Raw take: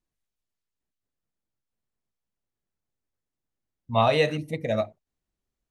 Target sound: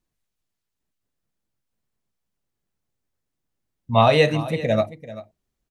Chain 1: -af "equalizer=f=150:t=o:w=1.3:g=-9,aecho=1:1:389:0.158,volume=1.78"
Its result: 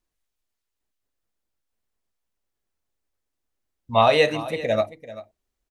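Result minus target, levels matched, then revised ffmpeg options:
125 Hz band -8.0 dB
-af "equalizer=f=150:t=o:w=1.3:g=2.5,aecho=1:1:389:0.158,volume=1.78"

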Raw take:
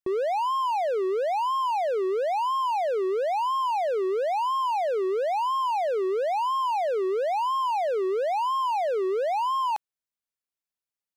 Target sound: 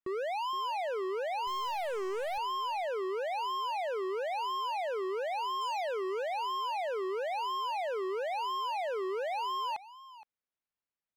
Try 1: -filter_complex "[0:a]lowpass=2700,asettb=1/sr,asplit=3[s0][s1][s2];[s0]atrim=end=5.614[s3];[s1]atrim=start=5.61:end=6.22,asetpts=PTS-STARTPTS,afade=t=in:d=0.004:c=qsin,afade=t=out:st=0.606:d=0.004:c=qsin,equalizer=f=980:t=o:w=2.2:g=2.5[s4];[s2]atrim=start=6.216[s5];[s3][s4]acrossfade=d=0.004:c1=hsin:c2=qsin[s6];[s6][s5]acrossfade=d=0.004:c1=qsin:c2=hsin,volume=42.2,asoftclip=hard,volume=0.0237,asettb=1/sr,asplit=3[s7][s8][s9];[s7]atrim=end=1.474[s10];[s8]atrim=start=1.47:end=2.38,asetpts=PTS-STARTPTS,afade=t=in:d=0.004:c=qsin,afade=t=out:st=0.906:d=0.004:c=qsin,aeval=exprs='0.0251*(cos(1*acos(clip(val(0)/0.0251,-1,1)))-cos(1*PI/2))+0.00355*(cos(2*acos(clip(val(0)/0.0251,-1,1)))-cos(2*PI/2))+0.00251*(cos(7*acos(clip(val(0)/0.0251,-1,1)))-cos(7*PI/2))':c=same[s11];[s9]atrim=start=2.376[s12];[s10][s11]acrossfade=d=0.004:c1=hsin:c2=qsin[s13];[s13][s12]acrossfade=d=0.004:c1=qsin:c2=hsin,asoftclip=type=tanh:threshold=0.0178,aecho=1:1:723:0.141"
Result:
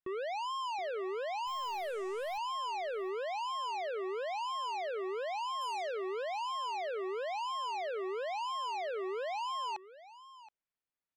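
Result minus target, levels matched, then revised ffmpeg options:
echo 255 ms late; saturation: distortion +14 dB
-filter_complex "[0:a]lowpass=2700,asettb=1/sr,asplit=3[s0][s1][s2];[s0]atrim=end=5.614[s3];[s1]atrim=start=5.61:end=6.22,asetpts=PTS-STARTPTS,afade=t=in:d=0.004:c=qsin,afade=t=out:st=0.606:d=0.004:c=qsin,equalizer=f=980:t=o:w=2.2:g=2.5[s4];[s2]atrim=start=6.216[s5];[s3][s4]acrossfade=d=0.004:c1=hsin:c2=qsin[s6];[s6][s5]acrossfade=d=0.004:c1=qsin:c2=hsin,volume=42.2,asoftclip=hard,volume=0.0237,asettb=1/sr,asplit=3[s7][s8][s9];[s7]atrim=end=1.474[s10];[s8]atrim=start=1.47:end=2.38,asetpts=PTS-STARTPTS,afade=t=in:d=0.004:c=qsin,afade=t=out:st=0.906:d=0.004:c=qsin,aeval=exprs='0.0251*(cos(1*acos(clip(val(0)/0.0251,-1,1)))-cos(1*PI/2))+0.00355*(cos(2*acos(clip(val(0)/0.0251,-1,1)))-cos(2*PI/2))+0.00251*(cos(7*acos(clip(val(0)/0.0251,-1,1)))-cos(7*PI/2))':c=same[s11];[s9]atrim=start=2.376[s12];[s10][s11]acrossfade=d=0.004:c1=hsin:c2=qsin[s13];[s13][s12]acrossfade=d=0.004:c1=qsin:c2=hsin,asoftclip=type=tanh:threshold=0.0473,aecho=1:1:468:0.141"

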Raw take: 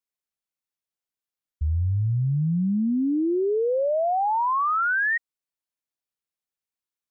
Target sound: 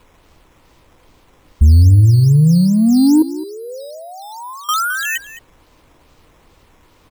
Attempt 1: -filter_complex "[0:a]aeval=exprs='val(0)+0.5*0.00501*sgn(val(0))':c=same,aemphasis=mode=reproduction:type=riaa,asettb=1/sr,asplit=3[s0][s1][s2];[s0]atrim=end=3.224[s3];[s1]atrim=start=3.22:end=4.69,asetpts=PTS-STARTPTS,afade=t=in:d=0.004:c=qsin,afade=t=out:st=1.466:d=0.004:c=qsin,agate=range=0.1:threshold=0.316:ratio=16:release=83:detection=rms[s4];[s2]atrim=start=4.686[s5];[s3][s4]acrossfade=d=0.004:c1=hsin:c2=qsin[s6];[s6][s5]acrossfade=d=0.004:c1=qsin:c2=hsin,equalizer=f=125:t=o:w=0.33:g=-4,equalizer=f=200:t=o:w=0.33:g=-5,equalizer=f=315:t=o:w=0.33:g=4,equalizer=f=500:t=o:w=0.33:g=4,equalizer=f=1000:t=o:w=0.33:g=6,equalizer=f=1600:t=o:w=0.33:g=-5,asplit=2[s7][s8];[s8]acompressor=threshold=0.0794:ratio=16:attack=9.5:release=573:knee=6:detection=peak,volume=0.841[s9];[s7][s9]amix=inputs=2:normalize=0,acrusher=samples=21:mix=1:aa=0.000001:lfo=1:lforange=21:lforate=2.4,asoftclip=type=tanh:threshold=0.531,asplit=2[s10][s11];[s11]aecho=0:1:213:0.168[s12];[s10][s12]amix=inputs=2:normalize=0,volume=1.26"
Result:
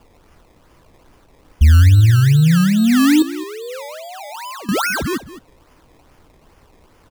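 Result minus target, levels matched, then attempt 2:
compression: peak gain reduction +9 dB; decimation with a swept rate: distortion +8 dB
-filter_complex "[0:a]aeval=exprs='val(0)+0.5*0.00501*sgn(val(0))':c=same,aemphasis=mode=reproduction:type=riaa,asettb=1/sr,asplit=3[s0][s1][s2];[s0]atrim=end=3.224[s3];[s1]atrim=start=3.22:end=4.69,asetpts=PTS-STARTPTS,afade=t=in:d=0.004:c=qsin,afade=t=out:st=1.466:d=0.004:c=qsin,agate=range=0.1:threshold=0.316:ratio=16:release=83:detection=rms[s4];[s2]atrim=start=4.686[s5];[s3][s4]acrossfade=d=0.004:c1=hsin:c2=qsin[s6];[s6][s5]acrossfade=d=0.004:c1=qsin:c2=hsin,equalizer=f=125:t=o:w=0.33:g=-4,equalizer=f=200:t=o:w=0.33:g=-5,equalizer=f=315:t=o:w=0.33:g=4,equalizer=f=500:t=o:w=0.33:g=4,equalizer=f=1000:t=o:w=0.33:g=6,equalizer=f=1600:t=o:w=0.33:g=-5,asplit=2[s7][s8];[s8]acompressor=threshold=0.237:ratio=16:attack=9.5:release=573:knee=6:detection=peak,volume=0.841[s9];[s7][s9]amix=inputs=2:normalize=0,acrusher=samples=7:mix=1:aa=0.000001:lfo=1:lforange=7:lforate=2.4,asoftclip=type=tanh:threshold=0.531,asplit=2[s10][s11];[s11]aecho=0:1:213:0.168[s12];[s10][s12]amix=inputs=2:normalize=0,volume=1.26"

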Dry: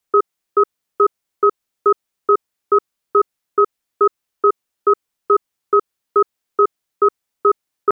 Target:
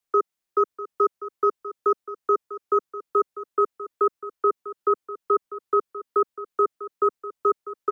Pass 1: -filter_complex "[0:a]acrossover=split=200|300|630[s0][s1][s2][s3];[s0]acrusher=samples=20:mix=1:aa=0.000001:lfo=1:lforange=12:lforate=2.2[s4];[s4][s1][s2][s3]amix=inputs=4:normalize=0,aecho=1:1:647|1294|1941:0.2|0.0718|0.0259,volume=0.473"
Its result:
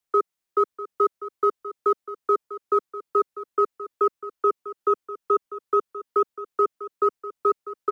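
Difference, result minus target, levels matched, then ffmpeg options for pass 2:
decimation with a swept rate: distortion +12 dB
-filter_complex "[0:a]acrossover=split=200|300|630[s0][s1][s2][s3];[s0]acrusher=samples=6:mix=1:aa=0.000001:lfo=1:lforange=3.6:lforate=2.2[s4];[s4][s1][s2][s3]amix=inputs=4:normalize=0,aecho=1:1:647|1294|1941:0.2|0.0718|0.0259,volume=0.473"

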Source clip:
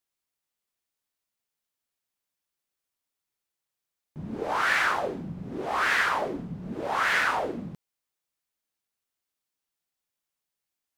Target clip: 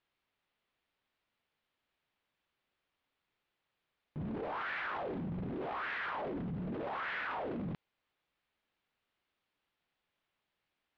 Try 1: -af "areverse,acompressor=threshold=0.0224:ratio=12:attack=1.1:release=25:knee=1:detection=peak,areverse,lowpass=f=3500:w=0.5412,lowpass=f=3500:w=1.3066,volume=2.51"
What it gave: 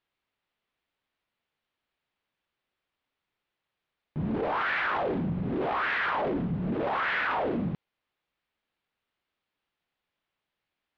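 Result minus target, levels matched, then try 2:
compression: peak gain reduction -10 dB
-af "areverse,acompressor=threshold=0.00631:ratio=12:attack=1.1:release=25:knee=1:detection=peak,areverse,lowpass=f=3500:w=0.5412,lowpass=f=3500:w=1.3066,volume=2.51"

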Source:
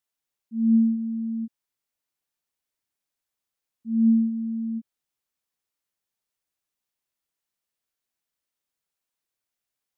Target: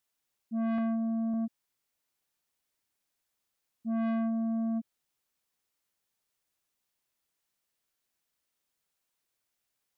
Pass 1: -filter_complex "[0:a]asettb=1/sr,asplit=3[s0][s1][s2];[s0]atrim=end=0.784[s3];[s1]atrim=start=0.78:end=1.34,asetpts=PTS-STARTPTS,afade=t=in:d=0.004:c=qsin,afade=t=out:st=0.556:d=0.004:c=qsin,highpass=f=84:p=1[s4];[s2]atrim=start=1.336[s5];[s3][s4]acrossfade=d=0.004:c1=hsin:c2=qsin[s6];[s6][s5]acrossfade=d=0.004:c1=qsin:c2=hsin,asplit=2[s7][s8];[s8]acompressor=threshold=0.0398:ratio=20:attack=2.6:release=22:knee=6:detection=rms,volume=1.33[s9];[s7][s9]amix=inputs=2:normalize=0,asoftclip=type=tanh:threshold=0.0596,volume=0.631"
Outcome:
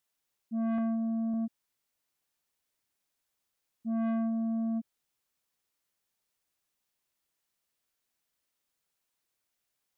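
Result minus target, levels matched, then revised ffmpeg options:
compression: peak gain reduction +7 dB
-filter_complex "[0:a]asettb=1/sr,asplit=3[s0][s1][s2];[s0]atrim=end=0.784[s3];[s1]atrim=start=0.78:end=1.34,asetpts=PTS-STARTPTS,afade=t=in:d=0.004:c=qsin,afade=t=out:st=0.556:d=0.004:c=qsin,highpass=f=84:p=1[s4];[s2]atrim=start=1.336[s5];[s3][s4]acrossfade=d=0.004:c1=hsin:c2=qsin[s6];[s6][s5]acrossfade=d=0.004:c1=qsin:c2=hsin,asplit=2[s7][s8];[s8]acompressor=threshold=0.0944:ratio=20:attack=2.6:release=22:knee=6:detection=rms,volume=1.33[s9];[s7][s9]amix=inputs=2:normalize=0,asoftclip=type=tanh:threshold=0.0596,volume=0.631"

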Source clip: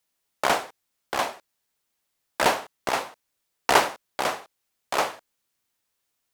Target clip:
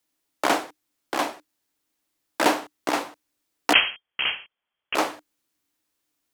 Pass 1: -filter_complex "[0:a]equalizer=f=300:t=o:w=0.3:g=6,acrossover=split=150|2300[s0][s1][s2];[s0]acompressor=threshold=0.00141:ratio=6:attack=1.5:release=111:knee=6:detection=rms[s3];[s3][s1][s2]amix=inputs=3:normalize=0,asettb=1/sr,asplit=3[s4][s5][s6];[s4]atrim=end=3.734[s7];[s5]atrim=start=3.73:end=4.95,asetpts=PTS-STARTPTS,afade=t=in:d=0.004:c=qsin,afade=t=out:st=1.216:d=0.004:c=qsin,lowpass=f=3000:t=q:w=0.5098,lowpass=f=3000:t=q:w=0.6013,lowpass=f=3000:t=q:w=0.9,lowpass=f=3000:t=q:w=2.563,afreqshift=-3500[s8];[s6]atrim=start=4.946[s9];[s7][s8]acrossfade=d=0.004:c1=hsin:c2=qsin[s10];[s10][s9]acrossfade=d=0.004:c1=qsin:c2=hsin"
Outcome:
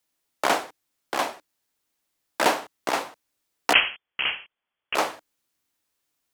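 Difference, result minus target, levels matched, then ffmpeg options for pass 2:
250 Hz band -5.0 dB
-filter_complex "[0:a]equalizer=f=300:t=o:w=0.3:g=14.5,acrossover=split=150|2300[s0][s1][s2];[s0]acompressor=threshold=0.00141:ratio=6:attack=1.5:release=111:knee=6:detection=rms[s3];[s3][s1][s2]amix=inputs=3:normalize=0,asettb=1/sr,asplit=3[s4][s5][s6];[s4]atrim=end=3.734[s7];[s5]atrim=start=3.73:end=4.95,asetpts=PTS-STARTPTS,afade=t=in:d=0.004:c=qsin,afade=t=out:st=1.216:d=0.004:c=qsin,lowpass=f=3000:t=q:w=0.5098,lowpass=f=3000:t=q:w=0.6013,lowpass=f=3000:t=q:w=0.9,lowpass=f=3000:t=q:w=2.563,afreqshift=-3500[s8];[s6]atrim=start=4.946[s9];[s7][s8]acrossfade=d=0.004:c1=hsin:c2=qsin[s10];[s10][s9]acrossfade=d=0.004:c1=qsin:c2=hsin"

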